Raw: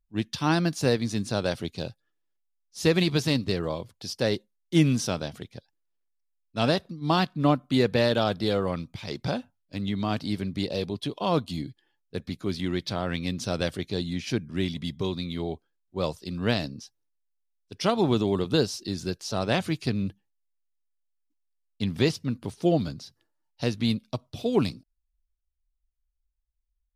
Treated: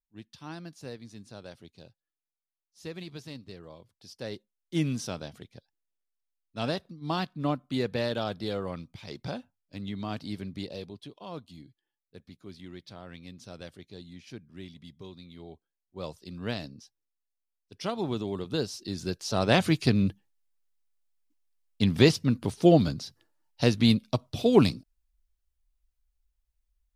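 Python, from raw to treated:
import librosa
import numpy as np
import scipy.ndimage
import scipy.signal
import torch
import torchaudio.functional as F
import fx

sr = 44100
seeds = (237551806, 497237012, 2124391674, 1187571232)

y = fx.gain(x, sr, db=fx.line((3.66, -18.0), (4.84, -7.0), (10.54, -7.0), (11.25, -16.0), (15.3, -16.0), (16.21, -8.0), (18.45, -8.0), (19.64, 4.0)))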